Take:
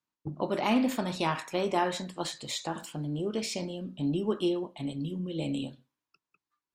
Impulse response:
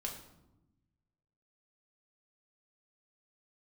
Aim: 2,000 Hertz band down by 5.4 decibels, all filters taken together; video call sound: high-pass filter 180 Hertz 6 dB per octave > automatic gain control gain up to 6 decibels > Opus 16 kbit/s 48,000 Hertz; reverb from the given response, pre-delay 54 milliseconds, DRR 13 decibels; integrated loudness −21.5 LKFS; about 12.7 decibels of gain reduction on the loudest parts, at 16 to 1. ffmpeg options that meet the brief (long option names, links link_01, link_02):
-filter_complex "[0:a]equalizer=frequency=2000:width_type=o:gain=-7,acompressor=threshold=-34dB:ratio=16,asplit=2[link_01][link_02];[1:a]atrim=start_sample=2205,adelay=54[link_03];[link_02][link_03]afir=irnorm=-1:irlink=0,volume=-12.5dB[link_04];[link_01][link_04]amix=inputs=2:normalize=0,highpass=frequency=180:poles=1,dynaudnorm=maxgain=6dB,volume=19.5dB" -ar 48000 -c:a libopus -b:a 16k